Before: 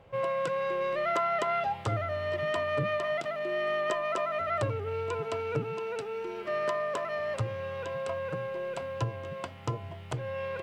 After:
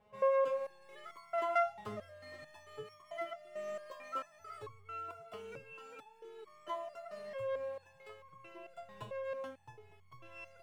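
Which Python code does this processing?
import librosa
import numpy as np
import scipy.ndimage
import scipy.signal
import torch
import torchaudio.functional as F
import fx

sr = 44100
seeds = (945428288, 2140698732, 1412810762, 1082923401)

y = scipy.signal.medfilt(x, 9)
y = fx.resonator_held(y, sr, hz=4.5, low_hz=210.0, high_hz=1100.0)
y = y * 10.0 ** (4.0 / 20.0)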